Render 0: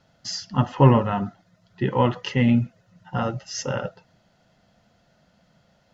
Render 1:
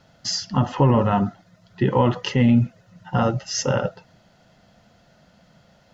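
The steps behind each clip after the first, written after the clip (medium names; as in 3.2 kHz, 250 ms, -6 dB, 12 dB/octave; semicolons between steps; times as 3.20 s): dynamic bell 2.1 kHz, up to -4 dB, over -37 dBFS, Q 0.91; loudness maximiser +13 dB; trim -7 dB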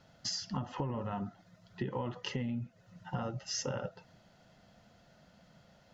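compression 8:1, threshold -27 dBFS, peak gain reduction 14.5 dB; trim -6.5 dB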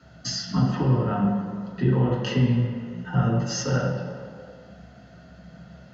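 reverberation RT60 2.2 s, pre-delay 3 ms, DRR -4 dB; trim -3 dB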